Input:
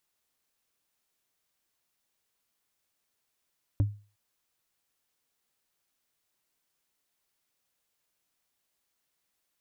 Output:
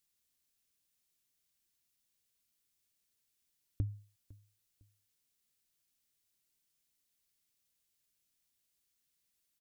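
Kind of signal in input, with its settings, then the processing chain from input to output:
wood hit, length 0.36 s, lowest mode 103 Hz, decay 0.35 s, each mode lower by 9 dB, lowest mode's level -18 dB
bell 850 Hz -13 dB 2.5 oct; compressor, threshold -31 dBFS; feedback echo 0.505 s, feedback 30%, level -22 dB

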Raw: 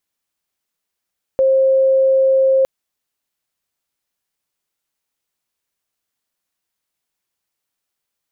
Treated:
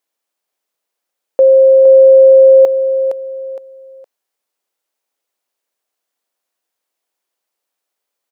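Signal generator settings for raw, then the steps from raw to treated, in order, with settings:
tone sine 532 Hz -10 dBFS 1.26 s
HPF 280 Hz 12 dB/oct; bell 570 Hz +7 dB 1.6 oct; feedback echo 0.464 s, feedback 30%, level -9 dB

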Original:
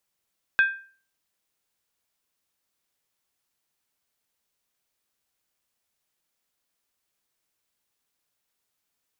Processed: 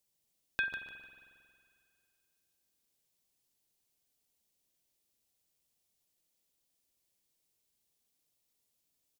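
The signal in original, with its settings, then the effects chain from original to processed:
skin hit, lowest mode 1580 Hz, decay 0.42 s, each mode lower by 11 dB, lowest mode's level -13 dB
bell 1400 Hz -13 dB 1.7 oct; on a send: feedback echo 0.149 s, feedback 32%, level -8.5 dB; on the sum: spring tank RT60 2.3 s, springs 45 ms, chirp 25 ms, DRR 7.5 dB

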